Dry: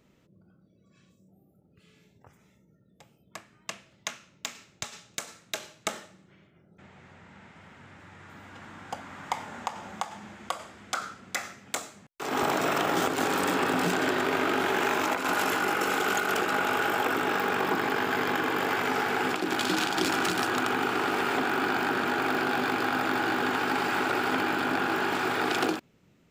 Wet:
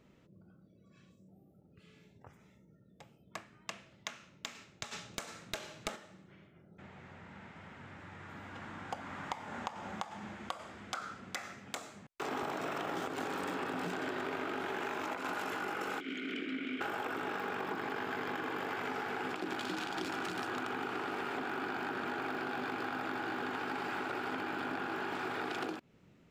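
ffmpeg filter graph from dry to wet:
-filter_complex "[0:a]asettb=1/sr,asplit=3[a][b][c];[a]atrim=end=4.914[d];[b]atrim=start=4.91:end=5.96,asetpts=PTS-STARTPTS,afade=t=in:d=0.004:c=qsin,afade=t=out:st=1.046:d=0.004:c=qsin,aeval=exprs='clip(val(0),-1,0.0398)':c=same,acontrast=69[e];[c]atrim=start=5.956[f];[d][e]acrossfade=d=0.004:c1=hsin:c2=qsin[g];[g][f]acrossfade=d=0.004:c1=qsin:c2=hsin,asettb=1/sr,asplit=3[h][i][j];[h]atrim=end=16.004[k];[i]atrim=start=16:end=16.81,asetpts=PTS-STARTPTS,afade=t=in:d=0.004:c=qsin,afade=t=out:st=0.806:d=0.004:c=qsin,asplit=3[l][m][n];[l]bandpass=f=270:t=q:w=8,volume=0dB[o];[m]bandpass=f=2.29k:t=q:w=8,volume=-6dB[p];[n]bandpass=f=3.01k:t=q:w=8,volume=-9dB[q];[o][p][q]amix=inputs=3:normalize=0,acontrast=83[r];[j]atrim=start=16.806[s];[k][r]acrossfade=d=0.004:c1=hsin:c2=qsin[t];[t][s]acrossfade=d=0.004:c1=qsin:c2=hsin,acompressor=threshold=-35dB:ratio=6,highshelf=f=5.5k:g=-9"

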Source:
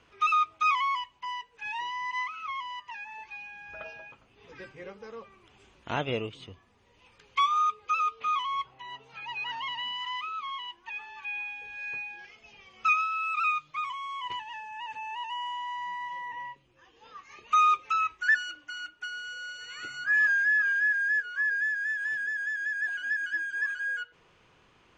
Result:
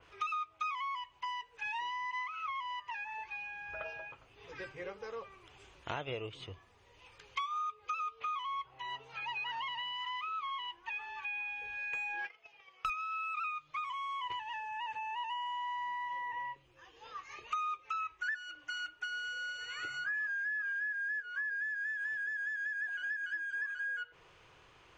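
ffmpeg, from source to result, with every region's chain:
-filter_complex "[0:a]asettb=1/sr,asplit=3[a][b][c];[a]atrim=end=11.934[d];[b]atrim=start=11.93:end=12.9,asetpts=PTS-STARTPTS,afade=t=in:d=0.004:c=qsin,afade=t=out:st=0.966:d=0.004:c=qsin,agate=range=-23dB:threshold=-50dB:ratio=16:release=100:detection=peak,aecho=1:1:6.2:0.37,atrim=end_sample=42777,asplit=2[e][f];[f]highpass=f=720:p=1,volume=23dB,asoftclip=type=tanh:threshold=-14.5dB[g];[e][g]amix=inputs=2:normalize=0,lowpass=f=1.9k:p=1,volume=-6dB[h];[c]atrim=start=12.896[i];[d][h]acrossfade=d=0.004:c1=hsin:c2=qsin[j];[j][i]acrossfade=d=0.004:c1=qsin:c2=hsin,equalizer=f=220:t=o:w=0.66:g=-11.5,acompressor=threshold=-37dB:ratio=6,adynamicequalizer=threshold=0.002:dfrequency=3200:dqfactor=0.7:tfrequency=3200:tqfactor=0.7:attack=5:release=100:ratio=0.375:range=3:mode=cutabove:tftype=highshelf,volume=1.5dB"

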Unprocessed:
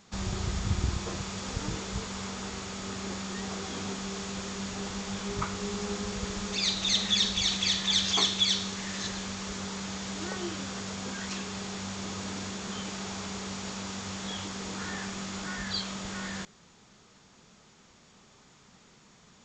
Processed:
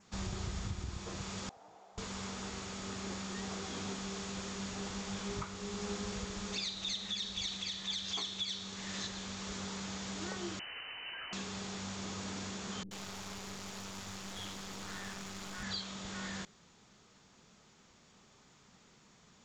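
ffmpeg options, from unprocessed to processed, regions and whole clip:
-filter_complex "[0:a]asettb=1/sr,asplit=3[a][b][c];[a]atrim=end=1.494[d];[b]atrim=start=1.49:end=1.98,asetpts=PTS-STARTPTS,afade=t=in:d=0.004:c=qsin,afade=t=out:st=0.486:d=0.004:c=qsin,bandpass=f=730:t=q:w=6.6,aemphasis=mode=production:type=75fm[e];[c]atrim=start=1.976[f];[d][e]acrossfade=d=0.004:c1=hsin:c2=qsin[g];[g][f]acrossfade=d=0.004:c1=qsin:c2=hsin,asettb=1/sr,asplit=3[h][i][j];[h]atrim=end=10.594[k];[i]atrim=start=10.59:end=11.33,asetpts=PTS-STARTPTS,afade=t=in:d=0.004:c=qsin,afade=t=out:st=0.736:d=0.004:c=qsin,highpass=220,lowpass=f=2.7k:t=q:w=0.5098,lowpass=f=2.7k:t=q:w=0.6013,lowpass=f=2.7k:t=q:w=0.9,lowpass=f=2.7k:t=q:w=2.563,afreqshift=-3200[l];[j]atrim=start=11.326[m];[k][l]acrossfade=d=0.004:c1=hsin:c2=qsin[n];[n][m]acrossfade=d=0.004:c1=qsin:c2=hsin,asettb=1/sr,asplit=3[o][p][q];[o]atrim=end=12.834[r];[p]atrim=start=12.83:end=15.63,asetpts=PTS-STARTPTS,afade=t=in:d=0.004:c=qsin,afade=t=out:st=2.796:d=0.004:c=qsin,aeval=exprs='clip(val(0),-1,0.00668)':c=same,acrossover=split=330[s][t];[t]adelay=80[u];[s][u]amix=inputs=2:normalize=0,atrim=end_sample=123480[v];[q]atrim=start=15.626[w];[r][v]acrossfade=d=0.004:c1=hsin:c2=qsin[x];[x][w]acrossfade=d=0.004:c1=qsin:c2=hsin,adynamicequalizer=threshold=0.00631:dfrequency=3700:dqfactor=3.5:tfrequency=3700:tqfactor=3.5:attack=5:release=100:ratio=0.375:range=2:mode=boostabove:tftype=bell,alimiter=limit=-23dB:level=0:latency=1:release=479,volume=-5dB"

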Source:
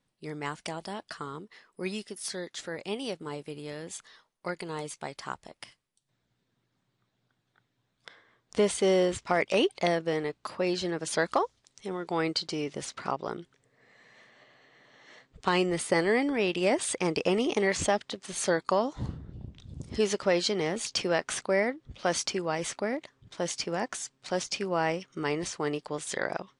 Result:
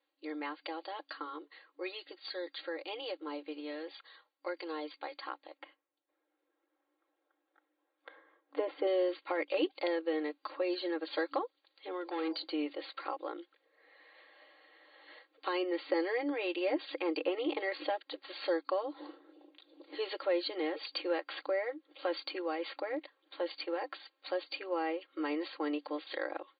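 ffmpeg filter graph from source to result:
-filter_complex "[0:a]asettb=1/sr,asplit=3[a][b][c];[a]atrim=end=5.584[d];[b]atrim=start=5.58:end=8.87,asetpts=PTS-STARTPTS,afade=t=in:d=0.004:c=qsin,afade=t=out:st=3.286:d=0.004:c=qsin,highpass=120,lowpass=2.5k,tiltshelf=f=1.4k:g=4.5[e];[c]atrim=start=8.866[f];[d][e]acrossfade=d=0.004:c1=hsin:c2=qsin[g];[g][f]acrossfade=d=0.004:c1=qsin:c2=hsin,asettb=1/sr,asplit=3[h][i][j];[h]atrim=end=12.014[k];[i]atrim=start=12.01:end=12.44,asetpts=PTS-STARTPTS,afade=t=in:d=0.004:c=qsin,afade=t=out:st=0.426:d=0.004:c=qsin,bandreject=f=49.7:t=h:w=4,bandreject=f=99.4:t=h:w=4,bandreject=f=149.1:t=h:w=4,bandreject=f=198.8:t=h:w=4,bandreject=f=248.5:t=h:w=4,bandreject=f=298.2:t=h:w=4,bandreject=f=347.9:t=h:w=4,bandreject=f=397.6:t=h:w=4,bandreject=f=447.3:t=h:w=4,bandreject=f=497:t=h:w=4,bandreject=f=546.7:t=h:w=4,bandreject=f=596.4:t=h:w=4,bandreject=f=646.1:t=h:w=4,bandreject=f=695.8:t=h:w=4,bandreject=f=745.5:t=h:w=4,bandreject=f=795.2:t=h:w=4,bandreject=f=844.9:t=h:w=4,bandreject=f=894.6:t=h:w=4,bandreject=f=944.3:t=h:w=4,bandreject=f=994:t=h:w=4,bandreject=f=1.0437k:t=h:w=4,asoftclip=type=hard:threshold=-29dB[l];[j]atrim=start=12.436[m];[k][l]acrossfade=d=0.004:c1=hsin:c2=qsin[n];[n][m]acrossfade=d=0.004:c1=qsin:c2=hsin,afftfilt=real='re*between(b*sr/4096,280,4700)':imag='im*between(b*sr/4096,280,4700)':win_size=4096:overlap=0.75,aecho=1:1:3.7:0.8,acrossover=split=400[o][p];[p]acompressor=threshold=-36dB:ratio=2[q];[o][q]amix=inputs=2:normalize=0,volume=-3.5dB"

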